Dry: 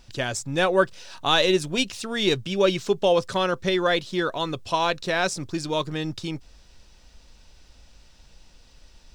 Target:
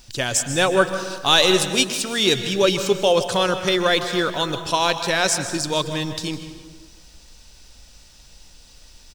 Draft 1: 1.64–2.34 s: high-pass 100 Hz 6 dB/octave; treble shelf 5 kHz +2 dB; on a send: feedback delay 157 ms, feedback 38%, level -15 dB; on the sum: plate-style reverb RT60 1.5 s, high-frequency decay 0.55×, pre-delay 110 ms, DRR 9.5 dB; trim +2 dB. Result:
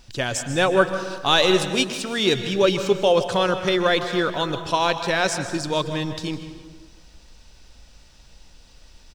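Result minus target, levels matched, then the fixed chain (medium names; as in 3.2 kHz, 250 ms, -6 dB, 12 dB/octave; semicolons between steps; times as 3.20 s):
8 kHz band -6.0 dB
1.64–2.34 s: high-pass 100 Hz 6 dB/octave; treble shelf 5 kHz +13.5 dB; on a send: feedback delay 157 ms, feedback 38%, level -15 dB; on the sum: plate-style reverb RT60 1.5 s, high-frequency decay 0.55×, pre-delay 110 ms, DRR 9.5 dB; trim +2 dB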